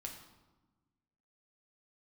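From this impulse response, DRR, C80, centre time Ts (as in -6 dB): 1.0 dB, 8.5 dB, 29 ms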